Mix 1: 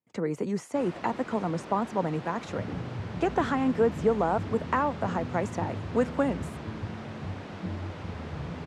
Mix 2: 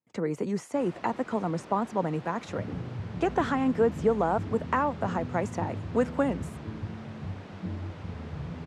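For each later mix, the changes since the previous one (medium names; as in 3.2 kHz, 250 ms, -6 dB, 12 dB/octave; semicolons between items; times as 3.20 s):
first sound -4.5 dB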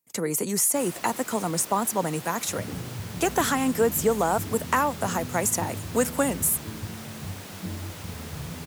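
master: remove tape spacing loss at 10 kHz 33 dB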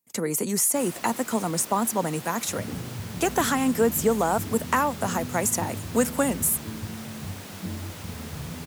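master: add peaking EQ 230 Hz +5 dB 0.23 oct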